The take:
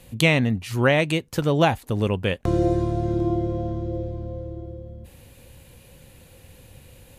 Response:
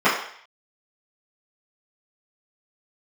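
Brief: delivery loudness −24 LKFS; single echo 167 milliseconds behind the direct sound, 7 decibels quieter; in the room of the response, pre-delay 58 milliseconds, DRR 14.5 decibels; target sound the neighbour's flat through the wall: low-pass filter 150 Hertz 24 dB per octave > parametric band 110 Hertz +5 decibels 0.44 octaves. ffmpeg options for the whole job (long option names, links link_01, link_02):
-filter_complex "[0:a]aecho=1:1:167:0.447,asplit=2[link_01][link_02];[1:a]atrim=start_sample=2205,adelay=58[link_03];[link_02][link_03]afir=irnorm=-1:irlink=0,volume=-37dB[link_04];[link_01][link_04]amix=inputs=2:normalize=0,lowpass=frequency=150:width=0.5412,lowpass=frequency=150:width=1.3066,equalizer=frequency=110:width_type=o:width=0.44:gain=5,volume=3dB"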